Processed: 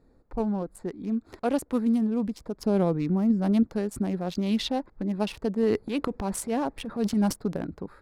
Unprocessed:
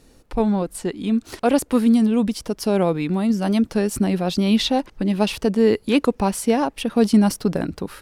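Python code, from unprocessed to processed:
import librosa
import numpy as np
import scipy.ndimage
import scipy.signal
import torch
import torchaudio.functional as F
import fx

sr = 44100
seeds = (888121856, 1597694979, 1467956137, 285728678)

y = fx.wiener(x, sr, points=15)
y = fx.low_shelf(y, sr, hz=320.0, db=7.5, at=(2.59, 3.63))
y = fx.transient(y, sr, attack_db=-7, sustain_db=8, at=(5.63, 7.33))
y = y * librosa.db_to_amplitude(-8.0)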